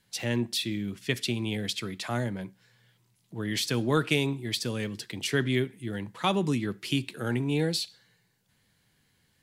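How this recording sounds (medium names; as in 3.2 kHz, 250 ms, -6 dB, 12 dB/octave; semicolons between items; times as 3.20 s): noise floor -70 dBFS; spectral tilt -4.5 dB/octave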